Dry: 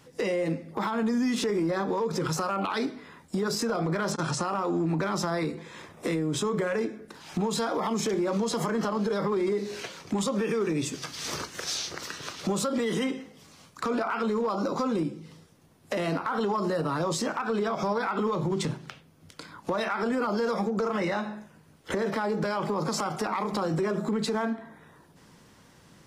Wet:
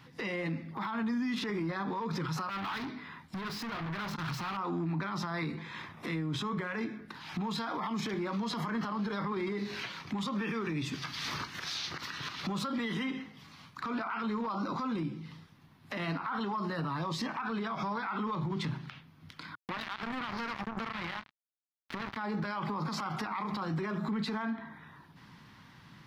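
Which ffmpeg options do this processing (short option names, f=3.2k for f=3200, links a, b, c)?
-filter_complex "[0:a]asettb=1/sr,asplit=3[a][b][c];[a]atrim=end=2.494[d];[b]atrim=start=2.49:end=4.57,asetpts=PTS-STARTPTS,afade=t=in:d=0.004:c=qsin,afade=t=out:st=2.076:d=0.004:c=qsin,volume=35.5dB,asoftclip=hard,volume=-35.5dB[e];[c]atrim=start=4.566[f];[d][e]acrossfade=d=0.004:c1=hsin:c2=qsin[g];[g][f]acrossfade=d=0.004:c1=qsin:c2=hsin,asettb=1/sr,asplit=3[h][i][j];[h]atrim=end=16.904[k];[i]atrim=start=16.9:end=17.4,asetpts=PTS-STARTPTS,afade=t=in:d=0.004:c=qsin,afade=t=out:st=0.496:d=0.004:c=qsin,bandreject=f=1.4k:w=5.9[l];[j]atrim=start=17.396[m];[k][l]acrossfade=d=0.004:c1=hsin:c2=qsin[n];[n][m]acrossfade=d=0.004:c1=qsin:c2=hsin,asettb=1/sr,asplit=3[o][p][q];[o]atrim=end=19.554[r];[p]atrim=start=19.55:end=22.17,asetpts=PTS-STARTPTS,afade=t=in:d=0.004:c=qsin,afade=t=out:st=2.616:d=0.004:c=qsin,acrusher=bits=3:mix=0:aa=0.5[s];[q]atrim=start=22.166[t];[r][s]acrossfade=d=0.004:c1=hsin:c2=qsin[u];[u][t]acrossfade=d=0.004:c1=qsin:c2=hsin,equalizer=f=125:t=o:w=1:g=7,equalizer=f=250:t=o:w=1:g=4,equalizer=f=500:t=o:w=1:g=-9,equalizer=f=1k:t=o:w=1:g=7,equalizer=f=2k:t=o:w=1:g=6,equalizer=f=4k:t=o:w=1:g=7,equalizer=f=8k:t=o:w=1:g=-12,alimiter=limit=-23dB:level=0:latency=1:release=67,volume=-4dB"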